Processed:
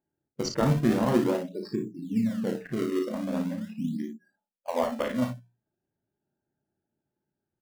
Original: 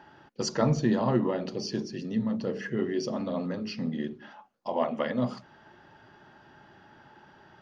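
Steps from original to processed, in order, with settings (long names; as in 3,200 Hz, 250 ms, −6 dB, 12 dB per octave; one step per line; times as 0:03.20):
adaptive Wiener filter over 41 samples
noise reduction from a noise print of the clip's start 28 dB
mains-hum notches 60/120/180 Hz
in parallel at −9 dB: sample-and-hold swept by an LFO 30×, swing 160% 0.42 Hz
on the sum: ambience of single reflections 35 ms −7 dB, 57 ms −8 dB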